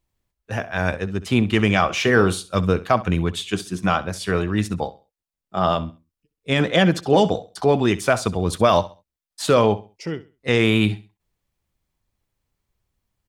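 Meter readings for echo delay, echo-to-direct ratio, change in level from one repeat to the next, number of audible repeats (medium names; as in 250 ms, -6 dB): 66 ms, -16.5 dB, -11.5 dB, 2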